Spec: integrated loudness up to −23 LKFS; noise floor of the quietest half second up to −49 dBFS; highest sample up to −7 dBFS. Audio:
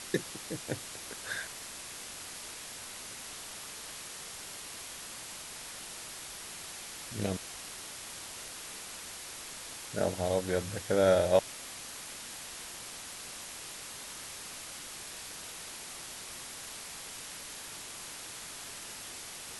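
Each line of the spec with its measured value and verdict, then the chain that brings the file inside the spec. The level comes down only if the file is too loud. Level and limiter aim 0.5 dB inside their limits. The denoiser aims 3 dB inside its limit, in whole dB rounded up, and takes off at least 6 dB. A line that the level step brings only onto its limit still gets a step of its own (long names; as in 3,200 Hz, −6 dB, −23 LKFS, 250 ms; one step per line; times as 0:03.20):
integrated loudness −37.0 LKFS: in spec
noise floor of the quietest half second −45 dBFS: out of spec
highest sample −11.5 dBFS: in spec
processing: broadband denoise 7 dB, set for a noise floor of −45 dBFS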